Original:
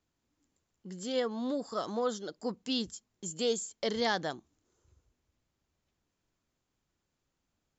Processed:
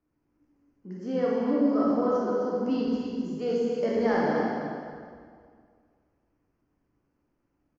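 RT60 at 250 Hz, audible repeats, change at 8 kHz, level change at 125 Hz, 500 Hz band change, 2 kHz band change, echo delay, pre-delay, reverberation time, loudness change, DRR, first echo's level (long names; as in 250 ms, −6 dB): 2.2 s, 1, can't be measured, +8.0 dB, +8.0 dB, +3.0 dB, 259 ms, 22 ms, 2.1 s, +7.0 dB, −6.0 dB, −6.5 dB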